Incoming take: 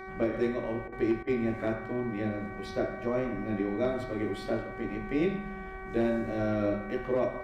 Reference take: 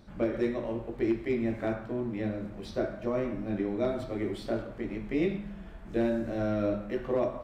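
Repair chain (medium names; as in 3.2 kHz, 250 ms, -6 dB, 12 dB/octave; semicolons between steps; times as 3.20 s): de-hum 379.7 Hz, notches 6; interpolate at 0.88/1.23 s, 42 ms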